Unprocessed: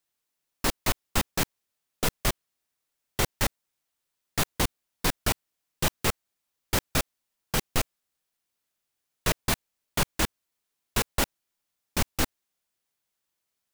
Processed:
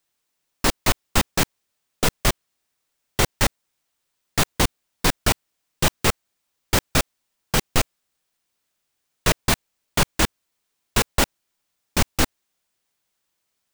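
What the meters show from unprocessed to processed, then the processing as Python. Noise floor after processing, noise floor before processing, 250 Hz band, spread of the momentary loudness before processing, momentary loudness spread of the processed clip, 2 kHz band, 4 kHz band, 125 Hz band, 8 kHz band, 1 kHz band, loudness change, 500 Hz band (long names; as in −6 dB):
−77 dBFS, −83 dBFS, +6.5 dB, 6 LU, 6 LU, +6.5 dB, +6.5 dB, +6.5 dB, +6.0 dB, +6.5 dB, +6.0 dB, +6.5 dB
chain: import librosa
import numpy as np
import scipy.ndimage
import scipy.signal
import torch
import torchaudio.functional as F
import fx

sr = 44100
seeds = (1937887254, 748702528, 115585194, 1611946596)

y = fx.peak_eq(x, sr, hz=12000.0, db=-9.0, octaves=0.2)
y = F.gain(torch.from_numpy(y), 6.5).numpy()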